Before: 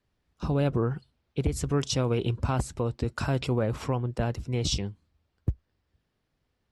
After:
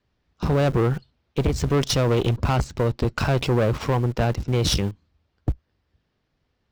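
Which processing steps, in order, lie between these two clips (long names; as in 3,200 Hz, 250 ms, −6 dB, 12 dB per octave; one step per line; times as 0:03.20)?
low-pass filter 6,300 Hz 24 dB per octave
tube saturation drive 27 dB, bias 0.6
in parallel at −5 dB: centre clipping without the shift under −39.5 dBFS
on the sum: level +7.5 dB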